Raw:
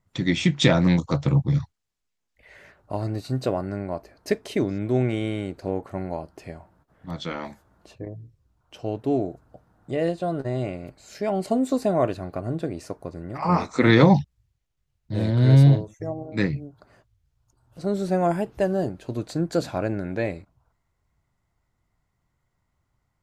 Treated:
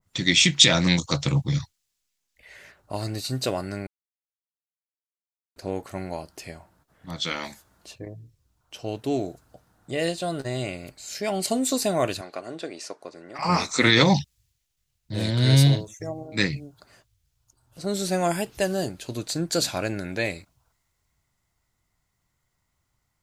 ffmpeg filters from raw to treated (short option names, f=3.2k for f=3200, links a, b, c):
-filter_complex "[0:a]asettb=1/sr,asplit=3[a][b][c];[a]atrim=end=12.214[d];[b]atrim=start=12.21:end=13.39,asetpts=PTS-STARTPTS,afade=t=in:d=0.004:c=qsin,afade=t=out:st=1.176:d=0.004:c=qsin,highpass=360,lowpass=6.5k[e];[c]atrim=start=13.386[f];[d][e]acrossfade=d=0.004:c1=hsin:c2=qsin[g];[g][f]acrossfade=d=0.004:c1=qsin:c2=hsin,asplit=3[h][i][j];[h]atrim=end=3.87,asetpts=PTS-STARTPTS,afade=t=out:st=3.866:d=0.004:c=hsin[k];[i]atrim=start=3.87:end=5.56,asetpts=PTS-STARTPTS,volume=0[l];[j]atrim=start=5.56,asetpts=PTS-STARTPTS,afade=t=in:d=0.004:c=hsin[m];[k][l][m]concat=n=3:v=0:a=1,highshelf=f=2.4k:g=12,alimiter=level_in=5dB:limit=-1dB:release=50:level=0:latency=1,adynamicequalizer=threshold=0.02:dfrequency=1900:dqfactor=0.7:tfrequency=1900:tqfactor=0.7:attack=5:release=100:ratio=0.375:range=4:mode=boostabove:tftype=highshelf,volume=-8dB"